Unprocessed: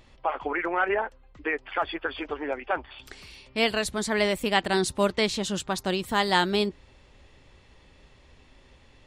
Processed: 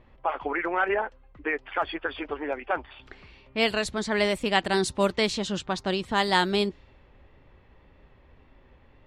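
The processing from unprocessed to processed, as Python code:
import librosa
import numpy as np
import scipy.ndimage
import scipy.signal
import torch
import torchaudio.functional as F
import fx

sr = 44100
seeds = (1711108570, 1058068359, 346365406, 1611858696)

y = fx.wow_flutter(x, sr, seeds[0], rate_hz=2.1, depth_cents=27.0)
y = fx.env_lowpass(y, sr, base_hz=1800.0, full_db=-19.0)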